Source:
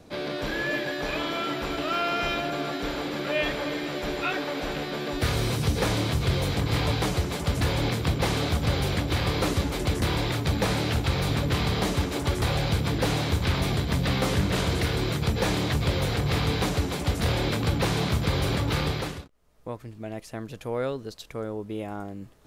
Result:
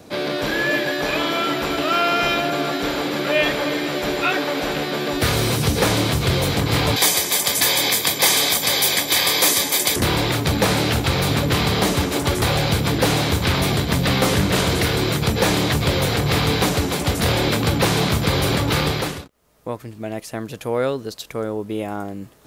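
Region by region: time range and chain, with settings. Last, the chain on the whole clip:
0:06.96–0:09.96: spectral tilt +4 dB per octave + notch filter 2,900 Hz, Q 24 + notch comb filter 1,400 Hz
whole clip: high-pass filter 120 Hz 6 dB per octave; high-shelf EQ 10,000 Hz +8 dB; level +8 dB

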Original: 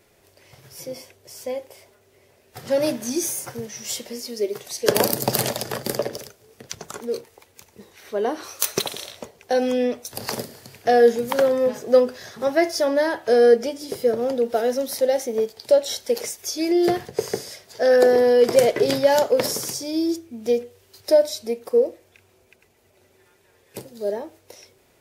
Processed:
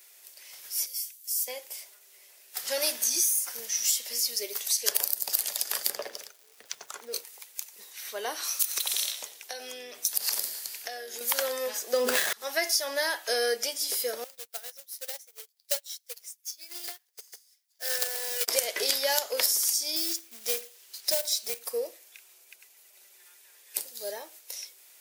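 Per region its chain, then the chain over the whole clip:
0:00.86–0:01.48: high-pass filter 540 Hz 6 dB per octave + first difference
0:05.88–0:07.12: low-pass filter 1,500 Hz 6 dB per octave + surface crackle 560 per second −54 dBFS
0:08.43–0:11.21: downward compressor, threshold −28 dBFS + echo with shifted repeats 92 ms, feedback 52%, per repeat −100 Hz, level −15 dB
0:11.93–0:12.33: running median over 9 samples + low-shelf EQ 420 Hz +11.5 dB + level that may fall only so fast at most 20 dB per second
0:14.24–0:18.48: high-pass filter 800 Hz 6 dB per octave + log-companded quantiser 4 bits + expander for the loud parts 2.5 to 1, over −39 dBFS
0:19.96–0:21.59: high-pass filter 200 Hz 6 dB per octave + high-shelf EQ 11,000 Hz −9 dB + floating-point word with a short mantissa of 2 bits
whole clip: high-pass filter 810 Hz 6 dB per octave; spectral tilt +4.5 dB per octave; downward compressor 12 to 1, threshold −19 dBFS; level −3 dB

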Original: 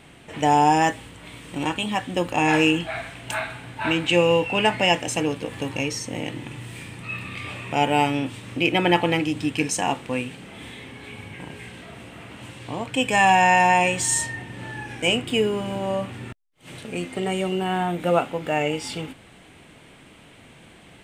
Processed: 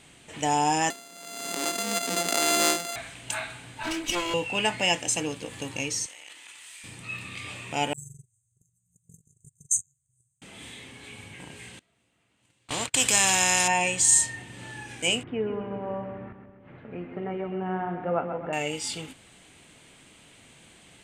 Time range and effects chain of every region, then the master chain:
0:00.90–0:02.96: samples sorted by size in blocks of 64 samples + Butterworth high-pass 190 Hz 48 dB per octave + background raised ahead of every attack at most 39 dB per second
0:03.83–0:04.34: lower of the sound and its delayed copy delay 3.1 ms + parametric band 5,500 Hz −4 dB 1.6 octaves
0:06.06–0:06.84: high-pass filter 1,200 Hz + downward compressor 4 to 1, threshold −41 dBFS + transient designer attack +2 dB, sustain +12 dB
0:07.93–0:10.42: linear-phase brick-wall band-stop 150–6,100 Hz + double-tracking delay 12 ms −13.5 dB + noise gate −36 dBFS, range −26 dB
0:11.79–0:13.68: noise gate −34 dBFS, range −40 dB + every bin compressed towards the loudest bin 2 to 1
0:15.23–0:18.53: low-pass filter 1,700 Hz 24 dB per octave + echo with a time of its own for lows and highs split 510 Hz, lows 171 ms, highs 131 ms, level −8 dB
whole clip: parametric band 6,900 Hz +12.5 dB 1.8 octaves; notch filter 5,500 Hz, Q 17; level −7.5 dB

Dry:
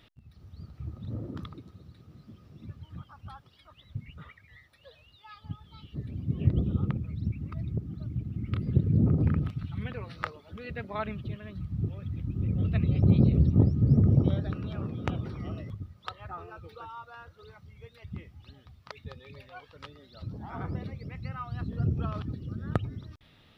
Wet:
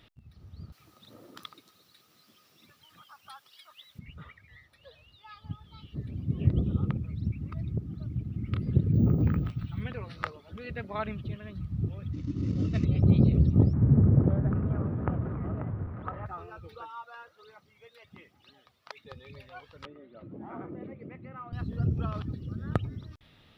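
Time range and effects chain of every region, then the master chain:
0:00.72–0:03.99: high-pass filter 470 Hz 6 dB per octave + spectral tilt +4 dB per octave
0:08.93–0:09.81: double-tracking delay 17 ms −11 dB + bad sample-rate conversion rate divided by 2×, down filtered, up hold
0:12.13–0:12.85: variable-slope delta modulation 32 kbit/s + parametric band 290 Hz +11 dB 0.33 octaves + notch comb filter 810 Hz
0:13.73–0:16.26: converter with a step at zero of −37 dBFS + low-pass filter 1,600 Hz 24 dB per octave + single-tap delay 538 ms −9.5 dB
0:16.82–0:19.12: high-pass filter 370 Hz + phase shifter 1.3 Hz, delay 2.1 ms, feedback 33%
0:19.85–0:21.53: variable-slope delta modulation 64 kbit/s + downward compressor 2.5 to 1, threshold −37 dBFS + loudspeaker in its box 180–2,300 Hz, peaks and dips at 240 Hz +4 dB, 340 Hz +10 dB, 560 Hz +5 dB, 890 Hz −3 dB, 1,600 Hz −4 dB
whole clip: no processing

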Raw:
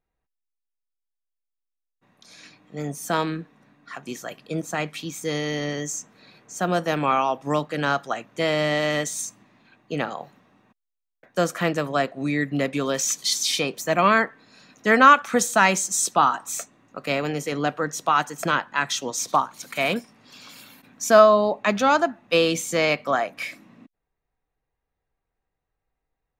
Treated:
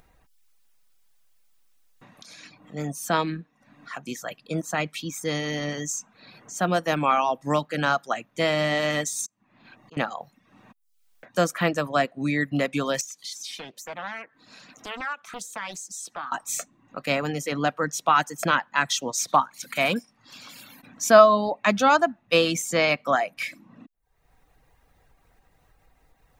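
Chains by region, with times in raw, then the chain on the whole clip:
0:09.26–0:09.97: volume swells 441 ms + saturating transformer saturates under 1,000 Hz
0:13.01–0:16.32: low-shelf EQ 240 Hz −5.5 dB + downward compressor 2 to 1, threshold −44 dBFS + highs frequency-modulated by the lows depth 0.79 ms
whole clip: parametric band 400 Hz −5 dB 0.41 octaves; upward compression, threshold −42 dBFS; reverb reduction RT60 0.56 s; level +1 dB

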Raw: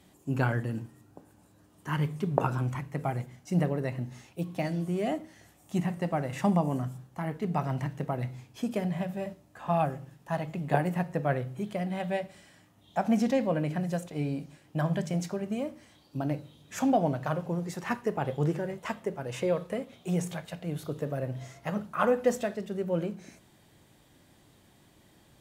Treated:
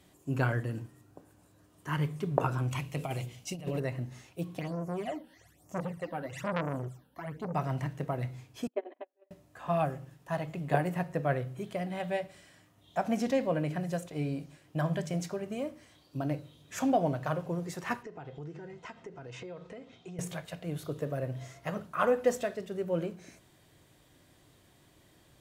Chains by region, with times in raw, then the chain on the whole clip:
0:02.71–0:03.80: high shelf with overshoot 2,200 Hz +6 dB, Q 3 + mains-hum notches 60/120/180/240/300/360/420/480/540 Hz + compressor whose output falls as the input rises −31 dBFS, ratio −0.5
0:04.59–0:07.55: all-pass phaser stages 12, 1.1 Hz, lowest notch 110–3,700 Hz + saturating transformer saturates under 1,300 Hz
0:08.67–0:09.31: noise gate −29 dBFS, range −39 dB + linear-phase brick-wall band-pass 260–4,200 Hz + spectral tilt −3.5 dB per octave
0:18.03–0:20.19: low-pass filter 6,600 Hz 24 dB per octave + notch comb filter 570 Hz + downward compressor 4 to 1, threshold −40 dBFS
whole clip: parametric band 210 Hz −7 dB 0.38 octaves; notch filter 840 Hz, Q 12; level −1 dB

